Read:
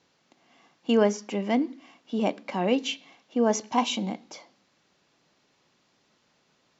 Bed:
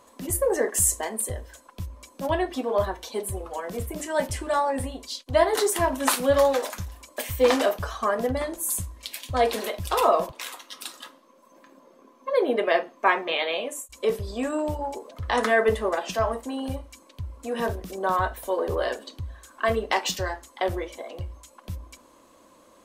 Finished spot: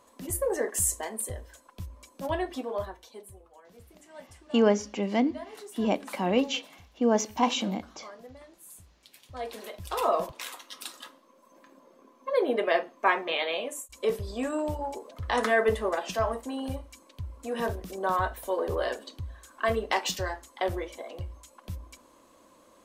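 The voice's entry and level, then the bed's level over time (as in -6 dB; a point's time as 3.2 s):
3.65 s, -0.5 dB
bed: 2.56 s -5 dB
3.53 s -22 dB
8.89 s -22 dB
10.28 s -3 dB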